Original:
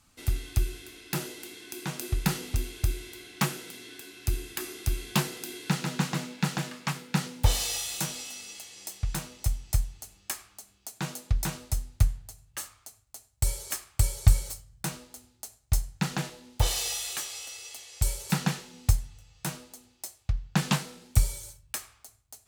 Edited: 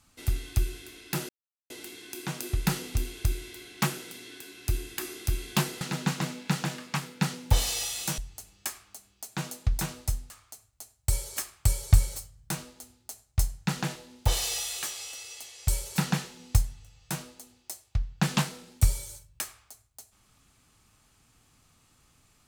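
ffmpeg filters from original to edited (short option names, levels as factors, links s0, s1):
-filter_complex "[0:a]asplit=5[s0][s1][s2][s3][s4];[s0]atrim=end=1.29,asetpts=PTS-STARTPTS,afade=t=out:st=1.286:d=0.004:c=hsin,apad=pad_dur=0.41[s5];[s1]atrim=start=1.29:end=5.402,asetpts=PTS-STARTPTS,afade=t=in:d=0.004:c=hsin[s6];[s2]atrim=start=5.738:end=8.112[s7];[s3]atrim=start=9.818:end=11.942[s8];[s4]atrim=start=12.638[s9];[s5][s6]concat=n=2:v=0:a=1[s10];[s10][s7]acrossfade=d=0.004:c1=hsin:c2=hsin[s11];[s11][s8]acrossfade=d=0.004:c1=hsin:c2=hsin[s12];[s12][s9]acrossfade=d=0.004:c1=hsin:c2=hsin"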